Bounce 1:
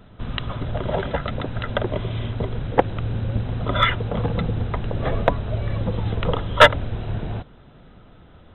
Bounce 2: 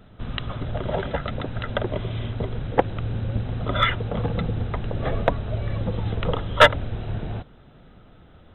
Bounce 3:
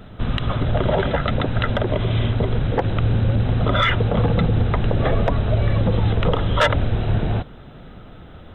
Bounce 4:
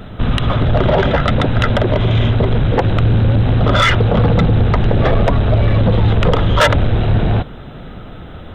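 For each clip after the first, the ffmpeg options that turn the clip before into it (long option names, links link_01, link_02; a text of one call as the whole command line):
ffmpeg -i in.wav -af "bandreject=frequency=1000:width=20,volume=-2dB" out.wav
ffmpeg -i in.wav -af "acontrast=44,alimiter=level_in=12dB:limit=-1dB:release=50:level=0:latency=1,volume=-8.5dB" out.wav
ffmpeg -i in.wav -af "asoftclip=type=tanh:threshold=-14.5dB,volume=8.5dB" out.wav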